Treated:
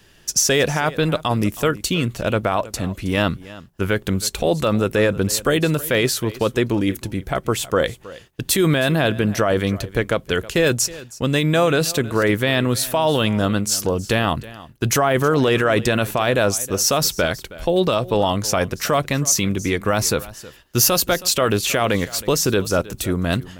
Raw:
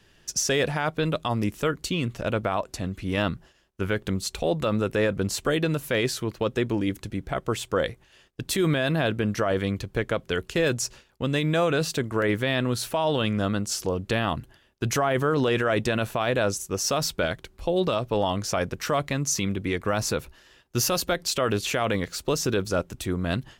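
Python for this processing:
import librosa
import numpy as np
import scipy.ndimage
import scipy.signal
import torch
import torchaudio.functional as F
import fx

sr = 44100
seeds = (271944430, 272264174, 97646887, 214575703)

p1 = fx.high_shelf(x, sr, hz=9900.0, db=10.5)
p2 = p1 + fx.echo_single(p1, sr, ms=319, db=-18.5, dry=0)
y = F.gain(torch.from_numpy(p2), 6.0).numpy()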